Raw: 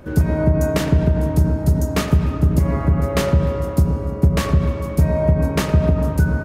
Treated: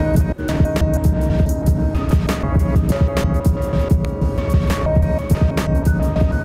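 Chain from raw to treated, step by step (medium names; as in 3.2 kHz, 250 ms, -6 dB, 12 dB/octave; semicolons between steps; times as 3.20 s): slices played last to first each 162 ms, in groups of 3; de-hum 381.9 Hz, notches 22; three bands compressed up and down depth 70%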